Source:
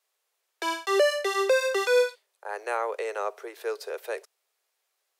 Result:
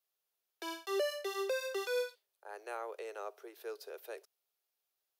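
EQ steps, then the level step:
octave-band graphic EQ 250/500/1,000/2,000/4,000/8,000 Hz −3/−9/−9/−11/−4/−11 dB
−1.5 dB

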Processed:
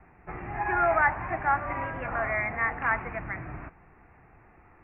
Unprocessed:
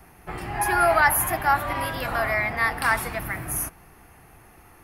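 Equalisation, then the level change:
Butterworth low-pass 2,500 Hz 72 dB per octave
−4.5 dB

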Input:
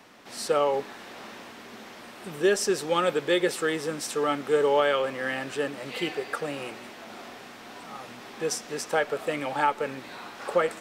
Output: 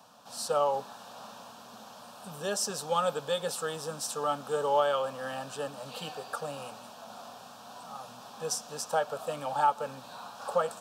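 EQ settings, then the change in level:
high-pass filter 110 Hz
phaser with its sweep stopped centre 850 Hz, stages 4
0.0 dB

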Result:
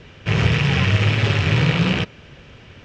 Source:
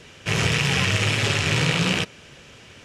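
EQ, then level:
high-frequency loss of the air 170 metres
low-shelf EQ 130 Hz +9 dB
+2.0 dB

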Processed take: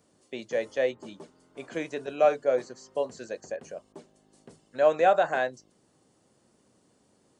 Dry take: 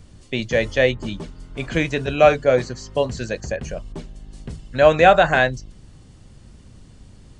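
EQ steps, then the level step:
high-pass filter 400 Hz 12 dB per octave
parametric band 2,900 Hz −11 dB 2.6 octaves
−5.0 dB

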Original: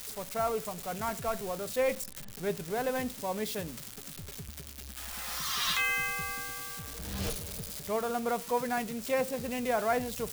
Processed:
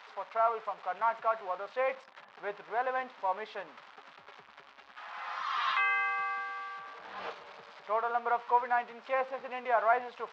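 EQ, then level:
high-pass with resonance 950 Hz, resonance Q 1.7
high-frequency loss of the air 180 metres
head-to-tape spacing loss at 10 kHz 32 dB
+6.5 dB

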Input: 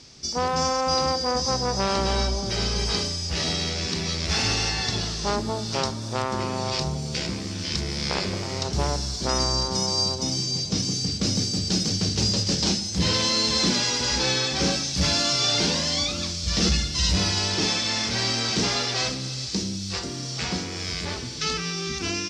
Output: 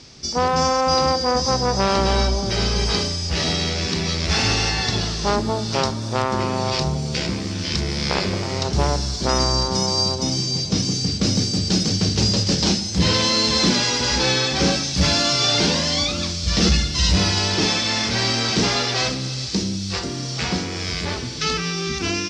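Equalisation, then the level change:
high-shelf EQ 7,300 Hz −8.5 dB
+5.5 dB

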